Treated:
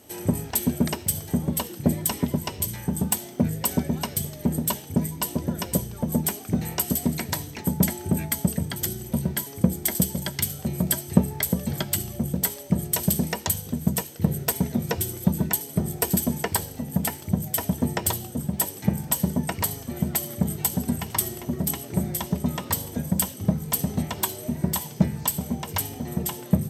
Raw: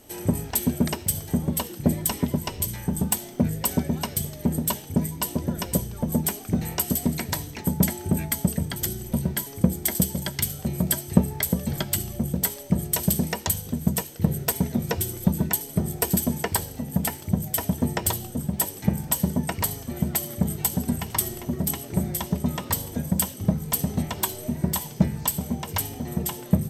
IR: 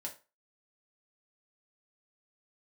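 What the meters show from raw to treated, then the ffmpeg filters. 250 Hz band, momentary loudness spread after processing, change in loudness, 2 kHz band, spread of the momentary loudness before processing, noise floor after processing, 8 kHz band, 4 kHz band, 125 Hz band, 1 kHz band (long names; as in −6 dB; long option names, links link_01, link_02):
0.0 dB, 5 LU, 0.0 dB, 0.0 dB, 4 LU, −40 dBFS, 0.0 dB, 0.0 dB, −0.5 dB, 0.0 dB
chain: -af "highpass=69"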